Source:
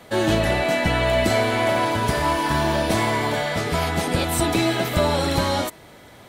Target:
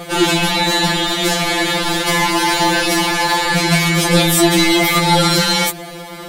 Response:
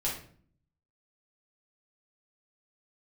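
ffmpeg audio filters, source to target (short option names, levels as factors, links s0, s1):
-af "apsyclip=16.8,aeval=exprs='1.06*(cos(1*acos(clip(val(0)/1.06,-1,1)))-cos(1*PI/2))+0.0119*(cos(2*acos(clip(val(0)/1.06,-1,1)))-cos(2*PI/2))':c=same,afftfilt=real='re*2.83*eq(mod(b,8),0)':imag='im*2.83*eq(mod(b,8),0)':win_size=2048:overlap=0.75,volume=0.473"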